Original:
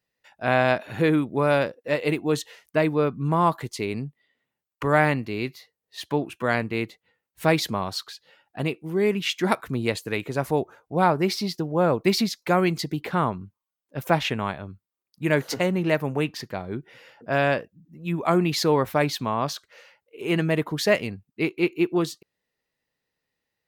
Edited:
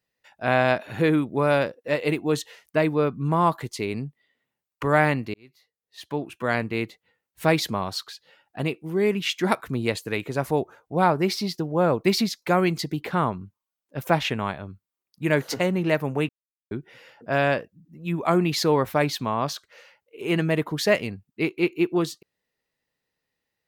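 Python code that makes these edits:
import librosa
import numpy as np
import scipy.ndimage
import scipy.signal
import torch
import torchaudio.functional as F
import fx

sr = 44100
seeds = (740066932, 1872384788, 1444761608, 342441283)

y = fx.edit(x, sr, fx.fade_in_span(start_s=5.34, length_s=1.3),
    fx.silence(start_s=16.29, length_s=0.42), tone=tone)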